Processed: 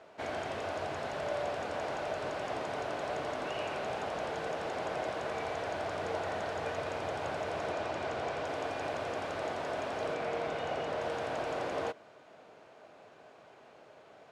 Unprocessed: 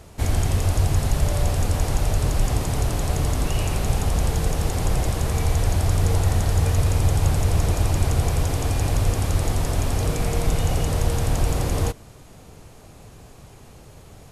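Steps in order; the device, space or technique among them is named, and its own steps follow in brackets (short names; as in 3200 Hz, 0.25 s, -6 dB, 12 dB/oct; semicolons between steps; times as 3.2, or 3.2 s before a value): 7.72–8.45 LPF 8700 Hz 12 dB/oct; 10.14–11.02 high shelf 7300 Hz -6.5 dB; tin-can telephone (BPF 410–2900 Hz; small resonant body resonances 630/1500 Hz, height 7 dB, ringing for 30 ms); gain -5 dB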